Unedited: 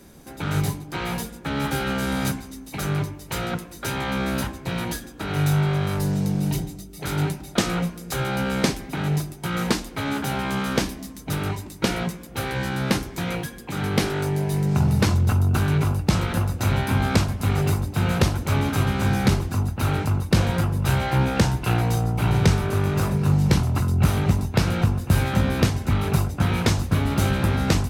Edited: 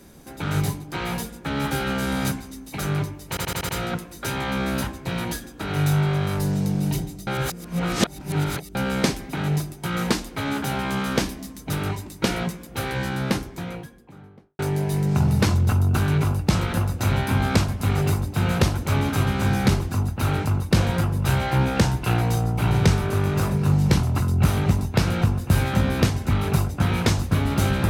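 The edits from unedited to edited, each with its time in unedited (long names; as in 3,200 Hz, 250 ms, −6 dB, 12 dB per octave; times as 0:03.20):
0:03.29: stutter 0.08 s, 6 plays
0:06.87–0:08.35: reverse
0:12.55–0:14.19: fade out and dull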